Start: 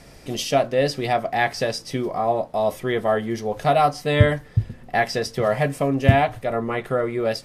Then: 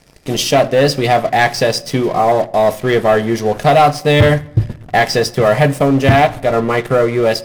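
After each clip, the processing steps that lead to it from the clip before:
leveller curve on the samples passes 3
rectangular room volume 3,100 cubic metres, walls furnished, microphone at 0.49 metres
level −1 dB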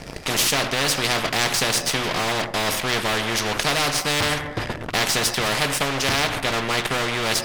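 high-shelf EQ 6,600 Hz −10.5 dB
every bin compressed towards the loudest bin 4 to 1
level −4.5 dB

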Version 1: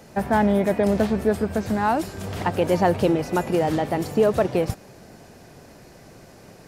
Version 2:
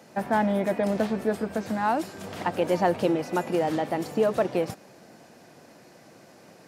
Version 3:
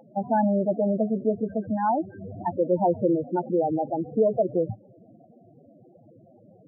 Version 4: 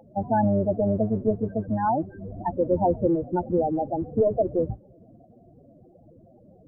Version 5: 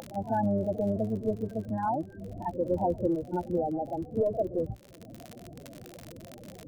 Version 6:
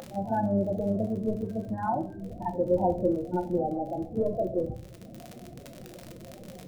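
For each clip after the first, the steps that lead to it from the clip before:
high-pass filter 190 Hz 12 dB per octave; high-shelf EQ 8,400 Hz −4 dB; notch filter 410 Hz, Q 12; level −3 dB
parametric band 110 Hz +9.5 dB 0.35 octaves; upward compression, threshold −49 dBFS; spectral peaks only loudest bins 8; level +2 dB
sub-octave generator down 1 octave, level −5 dB
surface crackle 47 per second −34 dBFS; upward compression, threshold −28 dBFS; echo ahead of the sound 45 ms −13.5 dB; level −6 dB
rectangular room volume 370 cubic metres, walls furnished, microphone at 0.99 metres

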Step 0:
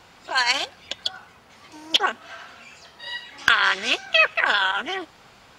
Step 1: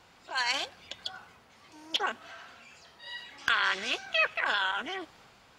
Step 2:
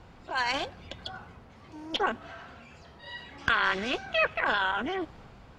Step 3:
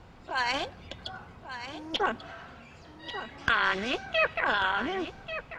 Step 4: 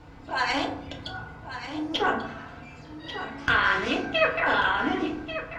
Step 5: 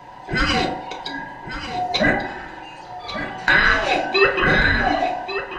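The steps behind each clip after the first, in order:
transient designer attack −3 dB, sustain +3 dB; level −8 dB
spectral tilt −3.5 dB per octave; level +3.5 dB
single-tap delay 1,140 ms −11 dB
feedback delay network reverb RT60 0.67 s, low-frequency decay 1.55×, high-frequency decay 0.45×, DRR −1.5 dB
frequency inversion band by band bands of 1,000 Hz; level +7 dB

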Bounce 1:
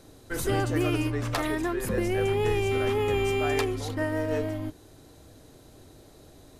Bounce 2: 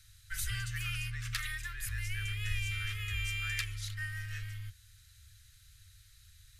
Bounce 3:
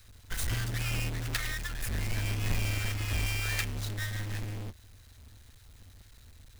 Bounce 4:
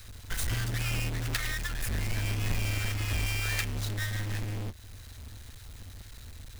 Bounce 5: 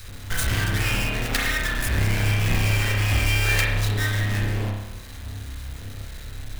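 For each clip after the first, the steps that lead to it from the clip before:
inverse Chebyshev band-stop filter 180–910 Hz, stop band 40 dB; level −2.5 dB
each half-wave held at its own peak
downward compressor 1.5 to 1, threshold −50 dBFS, peak gain reduction 9 dB; level +8.5 dB
convolution reverb RT60 0.95 s, pre-delay 30 ms, DRR −2.5 dB; level +6.5 dB

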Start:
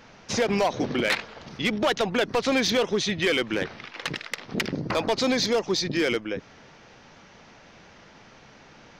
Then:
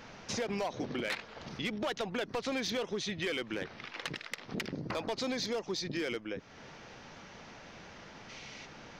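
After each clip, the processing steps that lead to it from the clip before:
gain on a spectral selection 0:08.29–0:08.66, 1,900–10,000 Hz +8 dB
downward compressor 2 to 1, threshold −42 dBFS, peak gain reduction 12 dB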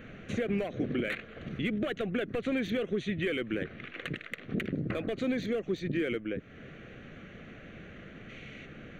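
high-shelf EQ 2,100 Hz −11 dB
phaser with its sweep stopped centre 2,200 Hz, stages 4
level +7.5 dB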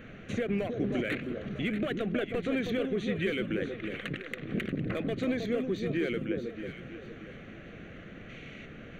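delay that swaps between a low-pass and a high-pass 317 ms, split 1,100 Hz, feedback 57%, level −5 dB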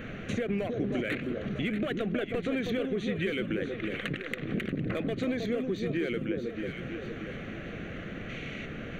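downward compressor 2 to 1, threshold −41 dBFS, peak gain reduction 9 dB
level +7.5 dB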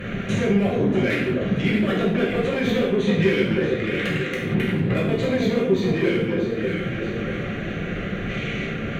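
harmonic generator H 5 −17 dB, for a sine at −16.5 dBFS
reverb whose tail is shaped and stops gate 220 ms falling, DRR −5.5 dB

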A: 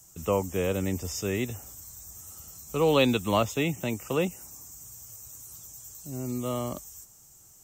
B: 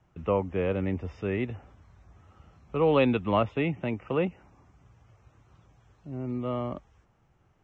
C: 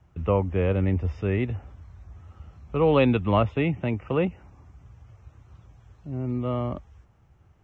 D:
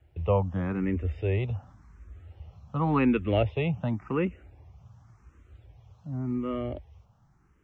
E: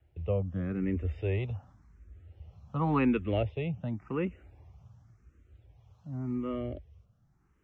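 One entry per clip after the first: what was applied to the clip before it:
low-pass filter 2,600 Hz 24 dB per octave
parametric band 71 Hz +11 dB 1.4 octaves; level +2 dB
frequency shifter mixed with the dry sound +0.9 Hz
rotating-speaker cabinet horn 0.6 Hz; level −2.5 dB

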